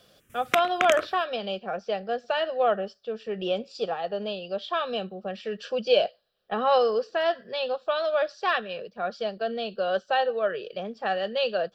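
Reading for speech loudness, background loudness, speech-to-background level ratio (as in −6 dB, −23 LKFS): −27.5 LKFS, −30.0 LKFS, 2.5 dB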